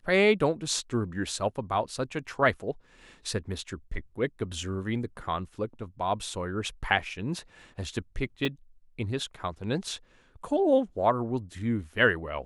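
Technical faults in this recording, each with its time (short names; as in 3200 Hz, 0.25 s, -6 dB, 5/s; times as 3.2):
8.45 gap 3.3 ms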